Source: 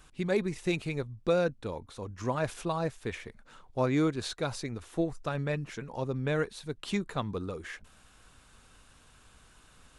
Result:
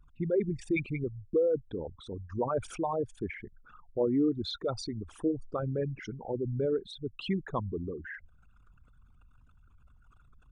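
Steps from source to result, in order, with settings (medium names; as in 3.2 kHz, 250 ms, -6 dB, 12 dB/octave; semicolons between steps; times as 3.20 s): resonances exaggerated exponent 3; tape speed -5%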